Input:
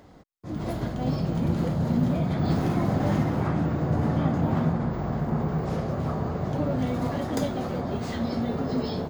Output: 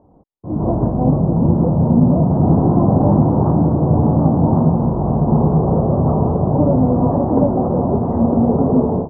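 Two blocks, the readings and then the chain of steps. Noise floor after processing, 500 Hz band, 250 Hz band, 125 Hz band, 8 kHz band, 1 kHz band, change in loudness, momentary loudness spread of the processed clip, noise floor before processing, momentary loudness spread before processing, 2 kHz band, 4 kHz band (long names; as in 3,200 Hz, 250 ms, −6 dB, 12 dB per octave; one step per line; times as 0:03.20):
−33 dBFS, +12.0 dB, +12.0 dB, +11.5 dB, can't be measured, +11.0 dB, +11.5 dB, 4 LU, −39 dBFS, 6 LU, below −10 dB, below −40 dB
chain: Chebyshev low-pass filter 970 Hz, order 4
automatic gain control gain up to 15.5 dB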